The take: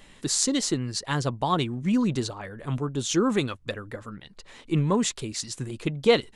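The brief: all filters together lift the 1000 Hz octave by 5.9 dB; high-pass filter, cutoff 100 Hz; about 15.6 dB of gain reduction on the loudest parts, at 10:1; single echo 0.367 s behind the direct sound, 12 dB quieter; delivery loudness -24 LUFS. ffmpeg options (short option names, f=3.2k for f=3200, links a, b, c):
-af "highpass=100,equalizer=f=1k:t=o:g=7,acompressor=threshold=-29dB:ratio=10,aecho=1:1:367:0.251,volume=10dB"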